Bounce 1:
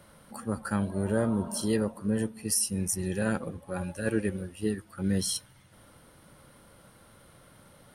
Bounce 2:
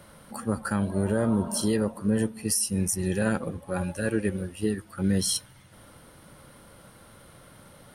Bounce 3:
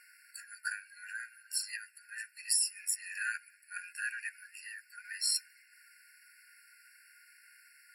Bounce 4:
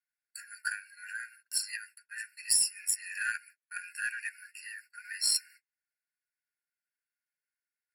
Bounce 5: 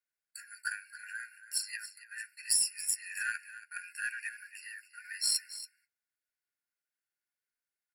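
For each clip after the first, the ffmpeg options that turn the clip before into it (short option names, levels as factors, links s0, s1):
-af "alimiter=limit=0.112:level=0:latency=1:release=159,volume=1.68"
-af "afftfilt=real='re*eq(mod(floor(b*sr/1024/1400),2),1)':imag='im*eq(mod(floor(b*sr/1024/1400),2),1)':win_size=1024:overlap=0.75"
-af "agate=range=0.0126:threshold=0.002:ratio=16:detection=peak,aeval=exprs='0.15*(cos(1*acos(clip(val(0)/0.15,-1,1)))-cos(1*PI/2))+0.00211*(cos(4*acos(clip(val(0)/0.15,-1,1)))-cos(4*PI/2))+0.00422*(cos(7*acos(clip(val(0)/0.15,-1,1)))-cos(7*PI/2))':c=same,volume=1.58"
-af "aecho=1:1:279:0.2,volume=0.794"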